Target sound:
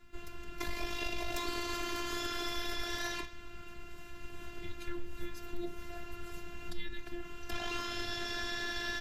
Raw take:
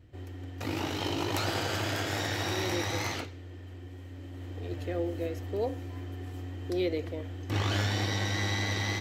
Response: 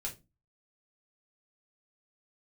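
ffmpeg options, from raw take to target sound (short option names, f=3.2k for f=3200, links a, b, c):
-af "afftfilt=real='hypot(re,im)*cos(PI*b)':imag='0':win_size=512:overlap=0.75,acompressor=threshold=-42dB:ratio=4,highpass=f=110:w=0.5412,highpass=f=110:w=1.3066,afreqshift=-340,volume=10.5dB"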